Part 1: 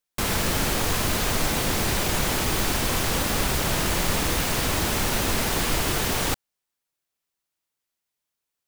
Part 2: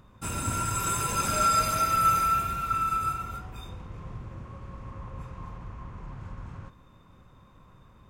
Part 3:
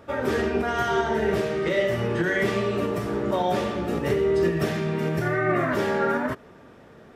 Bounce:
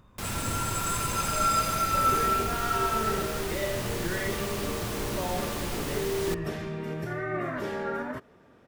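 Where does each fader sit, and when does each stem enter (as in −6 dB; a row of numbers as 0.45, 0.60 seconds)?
−11.0, −2.0, −8.5 decibels; 0.00, 0.00, 1.85 seconds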